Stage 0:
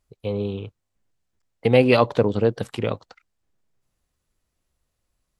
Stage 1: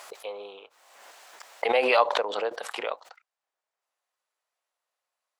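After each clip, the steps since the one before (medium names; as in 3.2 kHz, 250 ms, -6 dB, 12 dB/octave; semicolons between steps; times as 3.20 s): high-pass 680 Hz 24 dB/octave; tilt EQ -2.5 dB/octave; swell ahead of each attack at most 42 dB/s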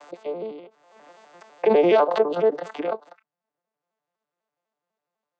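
vocoder on a broken chord minor triad, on D3, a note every 83 ms; bass shelf 470 Hz +11 dB; in parallel at -0.5 dB: peak limiter -14.5 dBFS, peak gain reduction 7.5 dB; on the sum: trim -3 dB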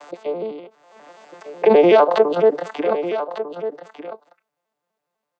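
delay 1199 ms -11.5 dB; trim +5 dB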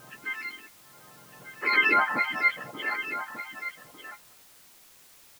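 spectrum inverted on a logarithmic axis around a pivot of 960 Hz; resampled via 11.025 kHz; word length cut 8-bit, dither triangular; trim -7 dB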